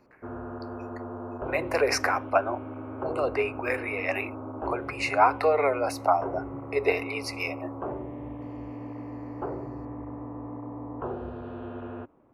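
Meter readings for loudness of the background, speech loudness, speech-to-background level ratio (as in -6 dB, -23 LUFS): -37.5 LUFS, -27.5 LUFS, 10.0 dB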